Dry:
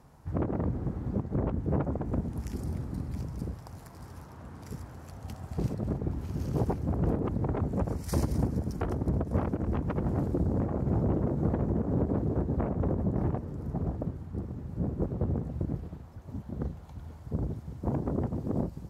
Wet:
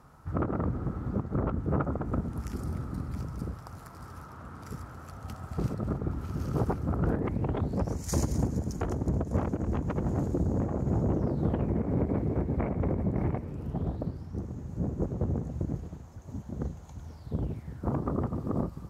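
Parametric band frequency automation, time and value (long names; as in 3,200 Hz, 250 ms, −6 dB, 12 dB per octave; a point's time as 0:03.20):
parametric band +13 dB 0.35 octaves
0:07.02 1,300 Hz
0:07.97 6,700 Hz
0:11.13 6,700 Hz
0:11.70 2,200 Hz
0:13.42 2,200 Hz
0:14.47 6,600 Hz
0:17.02 6,600 Hz
0:17.92 1,200 Hz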